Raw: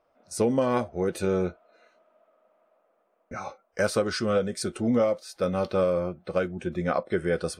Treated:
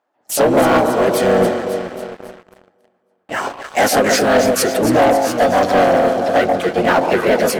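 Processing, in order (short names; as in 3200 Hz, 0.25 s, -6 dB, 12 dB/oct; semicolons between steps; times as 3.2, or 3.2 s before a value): HPF 300 Hz 12 dB/oct; echo with dull and thin repeats by turns 0.137 s, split 870 Hz, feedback 73%, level -6 dB; harmoniser -12 st -7 dB, +4 st -1 dB, +5 st -2 dB; sample leveller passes 3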